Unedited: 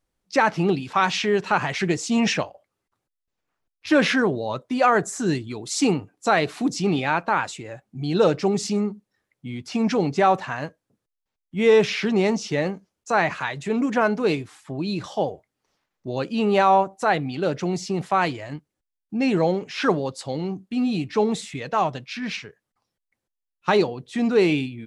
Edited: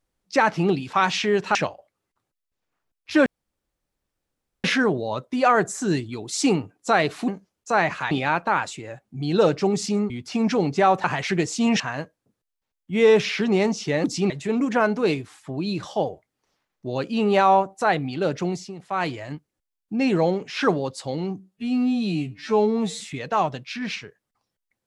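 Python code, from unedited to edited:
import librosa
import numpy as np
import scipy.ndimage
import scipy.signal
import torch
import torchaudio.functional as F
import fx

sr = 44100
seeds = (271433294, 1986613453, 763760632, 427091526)

y = fx.edit(x, sr, fx.move(start_s=1.55, length_s=0.76, to_s=10.44),
    fx.insert_room_tone(at_s=4.02, length_s=1.38),
    fx.swap(start_s=6.66, length_s=0.26, other_s=12.68, other_length_s=0.83),
    fx.cut(start_s=8.91, length_s=0.59),
    fx.fade_down_up(start_s=17.66, length_s=0.68, db=-13.0, fade_s=0.29),
    fx.stretch_span(start_s=20.61, length_s=0.8, factor=2.0), tone=tone)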